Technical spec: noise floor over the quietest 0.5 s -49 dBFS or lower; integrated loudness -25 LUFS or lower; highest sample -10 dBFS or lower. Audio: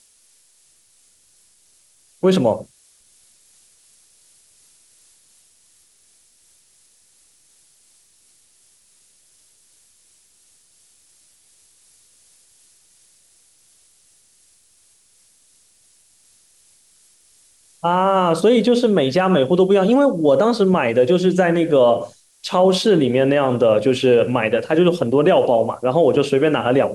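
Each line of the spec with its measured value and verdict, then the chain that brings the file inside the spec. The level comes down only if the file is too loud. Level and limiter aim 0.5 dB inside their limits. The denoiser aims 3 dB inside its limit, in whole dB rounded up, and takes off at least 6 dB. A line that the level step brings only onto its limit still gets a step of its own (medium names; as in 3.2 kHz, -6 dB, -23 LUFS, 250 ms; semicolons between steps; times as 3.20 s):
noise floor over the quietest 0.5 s -56 dBFS: pass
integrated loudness -16.5 LUFS: fail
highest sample -5.5 dBFS: fail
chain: trim -9 dB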